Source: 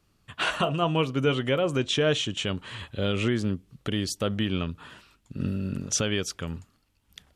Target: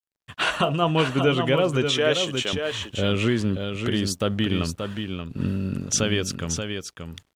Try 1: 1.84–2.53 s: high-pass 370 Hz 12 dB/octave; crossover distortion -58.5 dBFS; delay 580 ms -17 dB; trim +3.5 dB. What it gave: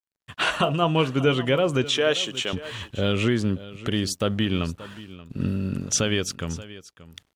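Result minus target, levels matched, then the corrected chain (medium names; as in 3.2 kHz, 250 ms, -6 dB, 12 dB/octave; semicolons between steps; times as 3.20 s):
echo-to-direct -10.5 dB
1.84–2.53 s: high-pass 370 Hz 12 dB/octave; crossover distortion -58.5 dBFS; delay 580 ms -6.5 dB; trim +3.5 dB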